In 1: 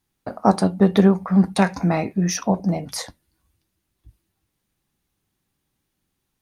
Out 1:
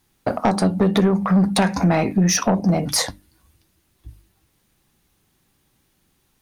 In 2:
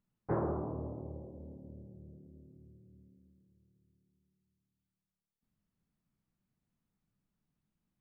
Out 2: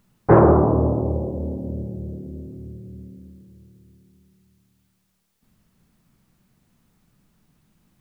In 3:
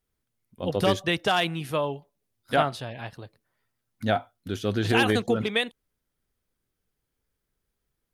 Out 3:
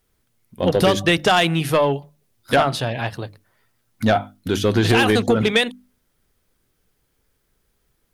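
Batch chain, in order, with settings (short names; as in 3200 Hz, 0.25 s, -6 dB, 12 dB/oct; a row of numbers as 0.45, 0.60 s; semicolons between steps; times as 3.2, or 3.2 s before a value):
notches 50/100/150/200/250/300 Hz; compressor 4:1, threshold -23 dBFS; soft clip -20.5 dBFS; match loudness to -19 LUFS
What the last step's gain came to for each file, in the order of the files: +11.0, +22.0, +12.5 dB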